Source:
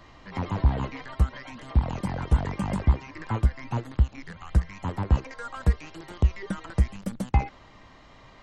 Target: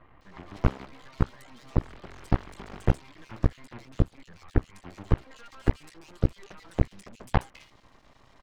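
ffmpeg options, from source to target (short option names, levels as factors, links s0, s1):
-filter_complex "[0:a]aeval=exprs='max(val(0),0)':c=same,acrossover=split=2500[s0][s1];[s1]adelay=210[s2];[s0][s2]amix=inputs=2:normalize=0,aeval=exprs='0.335*(cos(1*acos(clip(val(0)/0.335,-1,1)))-cos(1*PI/2))+0.0168*(cos(7*acos(clip(val(0)/0.335,-1,1)))-cos(7*PI/2))+0.0596*(cos(8*acos(clip(val(0)/0.335,-1,1)))-cos(8*PI/2))':c=same,volume=1.33"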